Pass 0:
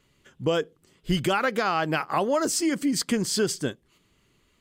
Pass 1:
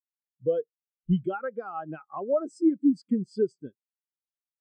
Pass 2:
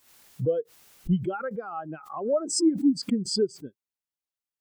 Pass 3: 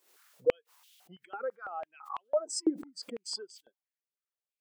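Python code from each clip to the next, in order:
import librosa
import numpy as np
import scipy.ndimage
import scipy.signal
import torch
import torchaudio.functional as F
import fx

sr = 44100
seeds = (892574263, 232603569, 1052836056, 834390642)

y1 = fx.spectral_expand(x, sr, expansion=2.5)
y2 = fx.pre_swell(y1, sr, db_per_s=92.0)
y3 = fx.filter_held_highpass(y2, sr, hz=6.0, low_hz=400.0, high_hz=3200.0)
y3 = F.gain(torch.from_numpy(y3), -8.5).numpy()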